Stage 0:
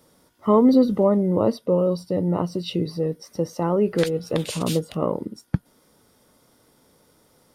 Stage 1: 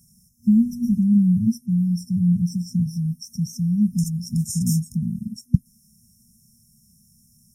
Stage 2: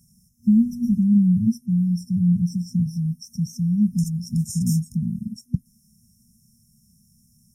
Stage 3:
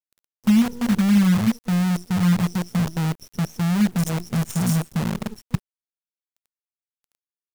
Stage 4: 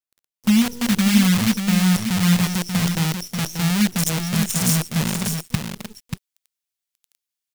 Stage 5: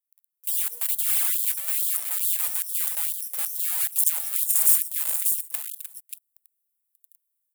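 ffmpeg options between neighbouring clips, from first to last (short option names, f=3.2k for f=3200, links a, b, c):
-af "afftfilt=real='re*(1-between(b*sr/4096,240,5200))':imag='im*(1-between(b*sr/4096,240,5200))':win_size=4096:overlap=0.75,volume=6dB"
-af "highshelf=f=4.4k:g=-4.5,alimiter=level_in=8.5dB:limit=-1dB:release=50:level=0:latency=1,volume=-8.5dB"
-af "acrusher=bits=5:dc=4:mix=0:aa=0.000001"
-filter_complex "[0:a]aecho=1:1:586:0.473,acrossover=split=2100[a][b];[b]dynaudnorm=f=140:g=7:m=10dB[c];[a][c]amix=inputs=2:normalize=0"
-af "aexciter=amount=8.5:drive=5.9:freq=8k,aphaser=in_gain=1:out_gain=1:delay=4.9:decay=0.26:speed=0.49:type=sinusoidal,afftfilt=real='re*gte(b*sr/1024,400*pow(3200/400,0.5+0.5*sin(2*PI*2.3*pts/sr)))':imag='im*gte(b*sr/1024,400*pow(3200/400,0.5+0.5*sin(2*PI*2.3*pts/sr)))':win_size=1024:overlap=0.75,volume=-12.5dB"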